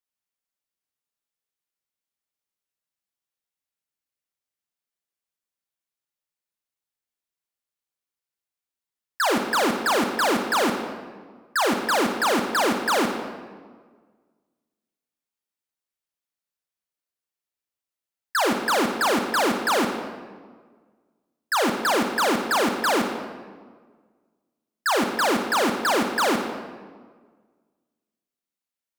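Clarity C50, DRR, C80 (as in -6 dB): 5.5 dB, 4.5 dB, 7.0 dB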